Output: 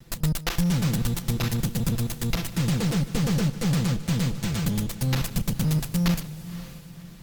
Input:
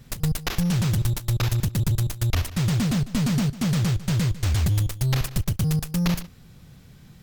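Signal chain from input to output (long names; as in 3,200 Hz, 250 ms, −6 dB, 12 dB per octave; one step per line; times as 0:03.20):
lower of the sound and its delayed copy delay 5.9 ms
feedback delay with all-pass diffusion 542 ms, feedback 42%, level −14 dB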